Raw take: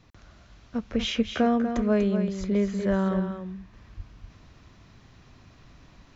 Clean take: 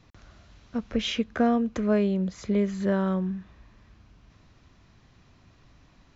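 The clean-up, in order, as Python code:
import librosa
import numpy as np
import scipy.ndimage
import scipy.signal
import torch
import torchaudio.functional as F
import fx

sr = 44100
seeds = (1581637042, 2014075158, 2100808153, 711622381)

y = fx.fix_deplosive(x, sr, at_s=(0.99, 1.75, 2.39, 2.89, 3.96))
y = fx.fix_echo_inverse(y, sr, delay_ms=242, level_db=-8.0)
y = fx.gain(y, sr, db=fx.steps((0.0, 0.0), (3.73, -4.0)))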